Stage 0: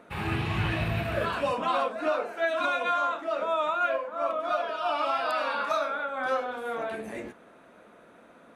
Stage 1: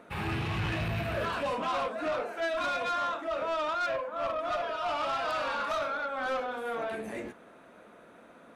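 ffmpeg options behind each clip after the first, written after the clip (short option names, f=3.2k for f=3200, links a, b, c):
-af "asoftclip=type=tanh:threshold=-26.5dB"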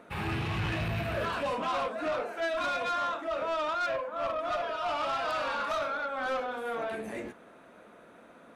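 -af anull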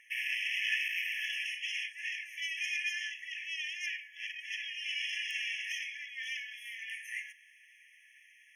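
-af "equalizer=f=8.7k:t=o:w=0.77:g=-2,afftfilt=real='re*eq(mod(floor(b*sr/1024/1700),2),1)':imag='im*eq(mod(floor(b*sr/1024/1700),2),1)':win_size=1024:overlap=0.75,volume=7dB"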